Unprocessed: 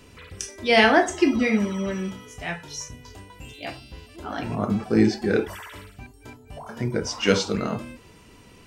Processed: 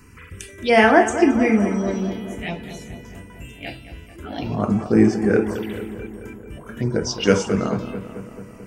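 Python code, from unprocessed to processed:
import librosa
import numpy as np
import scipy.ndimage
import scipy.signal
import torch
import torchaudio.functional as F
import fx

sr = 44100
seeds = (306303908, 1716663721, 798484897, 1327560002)

y = fx.env_phaser(x, sr, low_hz=580.0, high_hz=4000.0, full_db=-20.5)
y = fx.echo_filtered(y, sr, ms=219, feedback_pct=68, hz=2900.0, wet_db=-11.5)
y = y * librosa.db_to_amplitude(4.0)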